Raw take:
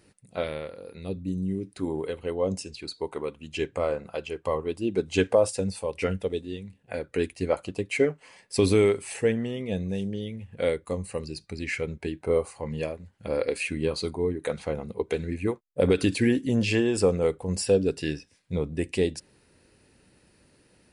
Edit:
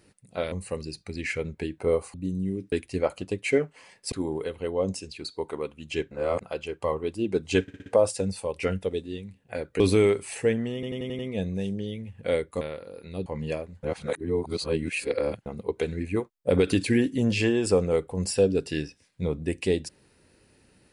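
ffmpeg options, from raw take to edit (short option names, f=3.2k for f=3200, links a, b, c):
-filter_complex "[0:a]asplit=21[a][b][c][d][e][f][g][h][i][j][k][l][m][n][o][p][q][r][s][t][u];[a]atrim=end=0.522[v];[b]atrim=start=10.948:end=12.572[w];[c]atrim=start=1.168:end=1.752[x];[d]atrim=start=7.188:end=8.592[y];[e]atrim=start=1.748:end=3.742[z];[f]atrim=start=3.738:end=4.042,asetpts=PTS-STARTPTS,areverse[aa];[g]atrim=start=4.038:end=5.312[ab];[h]atrim=start=5.248:end=5.312[ac];[i]atrim=start=5.248:end=5.312[ad];[j]atrim=start=5.248:end=5.312[ae];[k]atrim=start=5.248:end=7.192[af];[l]atrim=start=8.588:end=9.622[ag];[m]atrim=start=9.528:end=9.622[ah];[n]atrim=start=9.528:end=9.622[ai];[o]atrim=start=9.528:end=9.622[aj];[p]atrim=start=9.528:end=9.622[ak];[q]atrim=start=9.528:end=10.952[al];[r]atrim=start=0.518:end=1.172[am];[s]atrim=start=12.568:end=13.142[an];[t]atrim=start=13.138:end=14.772,asetpts=PTS-STARTPTS,areverse[ao];[u]atrim=start=14.768[ap];[v][w]acrossfade=d=0.004:c1=hsin:c2=hsin[aq];[aq][x]acrossfade=d=0.004:c1=hsin:c2=hsin[ar];[ar][y]acrossfade=d=0.004:c1=hsin:c2=hsin[as];[as][z]acrossfade=d=0.004:c1=hsin:c2=hsin[at];[at][aa]acrossfade=d=0.004:c1=hsin:c2=hsin[au];[au][ab]acrossfade=d=0.004:c1=hsin:c2=hsin[av];[av][ac]acrossfade=d=0.004:c1=hsin:c2=hsin[aw];[aw][ad]acrossfade=d=0.004:c1=hsin:c2=hsin[ax];[ax][ae]acrossfade=d=0.004:c1=hsin:c2=hsin[ay];[ay][af]acrossfade=d=0.004:c1=hsin:c2=hsin[az];[az][ag]acrossfade=d=0.004:c1=hsin:c2=hsin[ba];[ba][ah]acrossfade=d=0.004:c1=hsin:c2=hsin[bb];[bb][ai]acrossfade=d=0.004:c1=hsin:c2=hsin[bc];[bc][aj]acrossfade=d=0.004:c1=hsin:c2=hsin[bd];[bd][ak]acrossfade=d=0.004:c1=hsin:c2=hsin[be];[be][al]acrossfade=d=0.004:c1=hsin:c2=hsin[bf];[bf][am]acrossfade=d=0.004:c1=hsin:c2=hsin[bg];[bg][an]acrossfade=d=0.004:c1=hsin:c2=hsin[bh];[bh][ao]acrossfade=d=0.004:c1=hsin:c2=hsin[bi];[bi][ap]acrossfade=d=0.004:c1=hsin:c2=hsin"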